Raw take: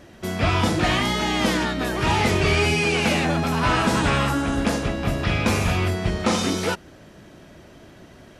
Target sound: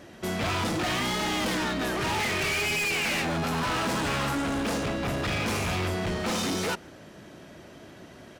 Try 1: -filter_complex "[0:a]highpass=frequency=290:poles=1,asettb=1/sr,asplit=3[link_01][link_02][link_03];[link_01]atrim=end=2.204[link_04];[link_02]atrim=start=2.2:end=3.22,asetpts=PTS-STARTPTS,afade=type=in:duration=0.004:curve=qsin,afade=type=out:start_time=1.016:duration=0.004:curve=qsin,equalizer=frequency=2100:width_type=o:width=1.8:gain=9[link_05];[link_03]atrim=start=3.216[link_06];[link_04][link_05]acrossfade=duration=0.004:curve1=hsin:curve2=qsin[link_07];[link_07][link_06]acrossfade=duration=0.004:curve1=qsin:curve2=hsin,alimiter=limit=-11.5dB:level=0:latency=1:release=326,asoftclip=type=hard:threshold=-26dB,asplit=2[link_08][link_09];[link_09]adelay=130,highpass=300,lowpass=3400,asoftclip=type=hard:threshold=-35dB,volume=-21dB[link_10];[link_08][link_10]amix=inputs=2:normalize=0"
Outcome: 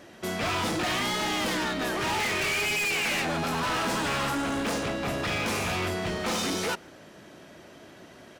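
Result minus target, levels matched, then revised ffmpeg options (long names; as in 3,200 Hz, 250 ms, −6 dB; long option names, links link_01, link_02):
125 Hz band −3.5 dB
-filter_complex "[0:a]highpass=frequency=120:poles=1,asettb=1/sr,asplit=3[link_01][link_02][link_03];[link_01]atrim=end=2.204[link_04];[link_02]atrim=start=2.2:end=3.22,asetpts=PTS-STARTPTS,afade=type=in:duration=0.004:curve=qsin,afade=type=out:start_time=1.016:duration=0.004:curve=qsin,equalizer=frequency=2100:width_type=o:width=1.8:gain=9[link_05];[link_03]atrim=start=3.216[link_06];[link_04][link_05]acrossfade=duration=0.004:curve1=hsin:curve2=qsin[link_07];[link_07][link_06]acrossfade=duration=0.004:curve1=qsin:curve2=hsin,alimiter=limit=-11.5dB:level=0:latency=1:release=326,asoftclip=type=hard:threshold=-26dB,asplit=2[link_08][link_09];[link_09]adelay=130,highpass=300,lowpass=3400,asoftclip=type=hard:threshold=-35dB,volume=-21dB[link_10];[link_08][link_10]amix=inputs=2:normalize=0"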